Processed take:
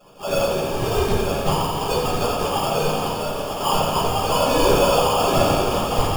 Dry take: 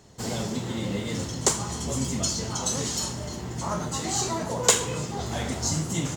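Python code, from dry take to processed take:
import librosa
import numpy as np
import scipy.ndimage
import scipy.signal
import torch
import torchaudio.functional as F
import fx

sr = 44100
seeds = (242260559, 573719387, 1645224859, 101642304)

y = fx.sine_speech(x, sr)
y = fx.tilt_eq(y, sr, slope=3.5)
y = y + 0.8 * np.pad(y, (int(1.8 * sr / 1000.0), 0))[:len(y)]
y = 10.0 ** (-21.0 / 20.0) * (np.abs((y / 10.0 ** (-21.0 / 20.0) + 3.0) % 4.0 - 2.0) - 1.0)
y = fx.spec_paint(y, sr, seeds[0], shape='rise', start_s=4.45, length_s=0.93, low_hz=240.0, high_hz=2000.0, level_db=-30.0)
y = fx.sample_hold(y, sr, seeds[1], rate_hz=2000.0, jitter_pct=0)
y = fx.notch(y, sr, hz=1500.0, q=7.2)
y = y + 10.0 ** (-8.5 / 20.0) * np.pad(y, (int(942 * sr / 1000.0), 0))[:len(y)]
y = fx.room_shoebox(y, sr, seeds[2], volume_m3=81.0, walls='mixed', distance_m=1.4)
y = fx.echo_crushed(y, sr, ms=86, feedback_pct=80, bits=7, wet_db=-8.0)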